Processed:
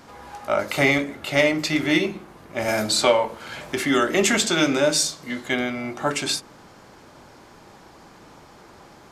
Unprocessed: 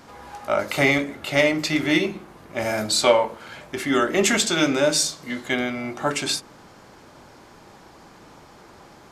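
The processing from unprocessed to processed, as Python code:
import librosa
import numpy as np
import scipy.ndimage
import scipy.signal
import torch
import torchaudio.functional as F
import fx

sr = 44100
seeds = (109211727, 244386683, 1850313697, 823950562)

y = fx.band_squash(x, sr, depth_pct=40, at=(2.68, 4.78))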